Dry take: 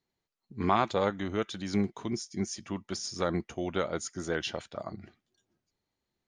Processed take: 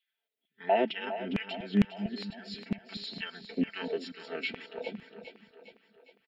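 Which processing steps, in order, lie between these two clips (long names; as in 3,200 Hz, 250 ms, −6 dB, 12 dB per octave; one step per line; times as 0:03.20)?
formants moved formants −4 semitones
phaser with its sweep stopped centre 2,600 Hz, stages 4
comb filter 4.5 ms, depth 79%
auto-filter high-pass saw down 2.2 Hz 230–2,500 Hz
on a send: echo with a time of its own for lows and highs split 310 Hz, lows 241 ms, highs 407 ms, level −11 dB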